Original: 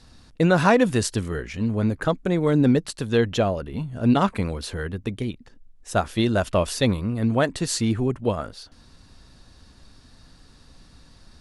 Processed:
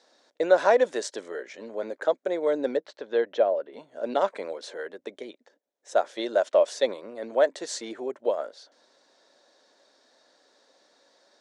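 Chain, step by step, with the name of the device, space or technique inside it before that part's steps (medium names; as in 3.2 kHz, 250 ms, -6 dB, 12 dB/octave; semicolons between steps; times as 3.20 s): phone speaker on a table (cabinet simulation 380–7100 Hz, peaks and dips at 580 Hz +9 dB, 1.2 kHz -6 dB, 2.7 kHz -9 dB, 4.7 kHz -5 dB); 2.77–3.73 s: distance through air 200 m; trim -3.5 dB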